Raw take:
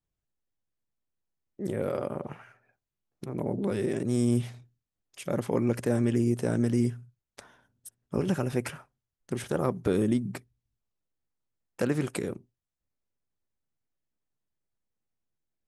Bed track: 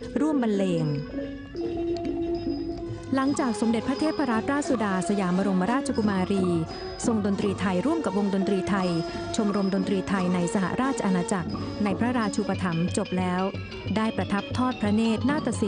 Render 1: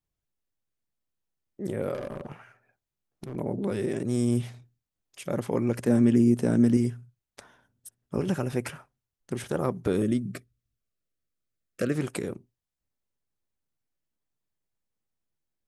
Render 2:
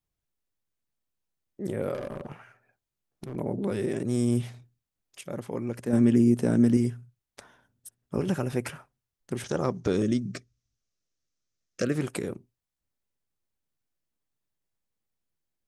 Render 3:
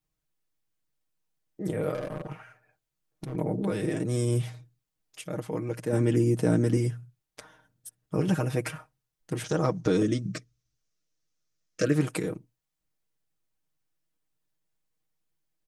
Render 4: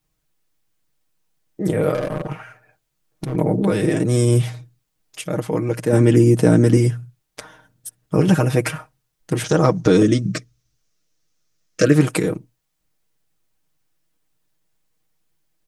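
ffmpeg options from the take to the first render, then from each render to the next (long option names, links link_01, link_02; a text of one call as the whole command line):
ffmpeg -i in.wav -filter_complex "[0:a]asettb=1/sr,asplit=3[link_01][link_02][link_03];[link_01]atrim=end=1.944[link_04];[link_02]atrim=start=1.94:end=3.36,asetpts=PTS-STARTPTS,afade=type=in:duration=0.004:curve=qsin,afade=type=out:start_time=1.416:duration=0.004:curve=qsin,asoftclip=type=hard:threshold=-30dB[link_05];[link_03]atrim=start=3.356[link_06];[link_04][link_05]acrossfade=duration=0.004:curve1=hsin:curve2=qsin[link_07];[link_07][link_06]acrossfade=duration=0.004:curve1=qsin:curve2=hsin,asettb=1/sr,asplit=3[link_08][link_09][link_10];[link_08]atrim=end=5.874[link_11];[link_09]atrim=start=5.87:end=6.77,asetpts=PTS-STARTPTS,afade=type=in:duration=0.004:curve=qsin,afade=type=out:start_time=0.896:duration=0.004:curve=qsin,equalizer=frequency=230:width=1.5:gain=7.5[link_12];[link_10]atrim=start=6.766[link_13];[link_11][link_12]acrossfade=duration=0.004:curve1=hsin:curve2=qsin[link_14];[link_14][link_13]acrossfade=duration=0.004:curve1=qsin:curve2=hsin,asettb=1/sr,asplit=3[link_15][link_16][link_17];[link_15]atrim=end=10.024[link_18];[link_16]atrim=start=10.02:end=11.96,asetpts=PTS-STARTPTS,afade=type=in:duration=0.004:curve=qsin,afade=type=out:start_time=1.936:duration=0.004:curve=qsin,asuperstop=centerf=880:order=12:qfactor=2.3[link_19];[link_17]atrim=start=11.956[link_20];[link_18][link_19]acrossfade=duration=0.004:curve1=hsin:curve2=qsin[link_21];[link_21][link_20]acrossfade=duration=0.004:curve1=qsin:curve2=hsin" out.wav
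ffmpeg -i in.wav -filter_complex "[0:a]asettb=1/sr,asplit=3[link_01][link_02][link_03];[link_01]atrim=end=9.444[link_04];[link_02]atrim=start=9.44:end=11.84,asetpts=PTS-STARTPTS,afade=type=in:duration=0.004:curve=qsin,afade=type=out:start_time=2.396:duration=0.004:curve=qsin,lowpass=frequency=6000:width_type=q:width=3.7[link_05];[link_03]atrim=start=11.836[link_06];[link_04][link_05]acrossfade=duration=0.004:curve1=hsin:curve2=qsin[link_07];[link_07][link_06]acrossfade=duration=0.004:curve1=qsin:curve2=hsin,asplit=3[link_08][link_09][link_10];[link_08]atrim=end=5.212[link_11];[link_09]atrim=start=5.208:end=5.932,asetpts=PTS-STARTPTS,volume=-6dB[link_12];[link_10]atrim=start=5.928[link_13];[link_11][link_12]acrossfade=duration=0.004:curve1=hsin:curve2=hsin[link_14];[link_14][link_13]acrossfade=duration=0.004:curve1=hsin:curve2=hsin" out.wav
ffmpeg -i in.wav -af "aecho=1:1:6.4:0.75" out.wav
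ffmpeg -i in.wav -af "volume=10.5dB,alimiter=limit=-1dB:level=0:latency=1" out.wav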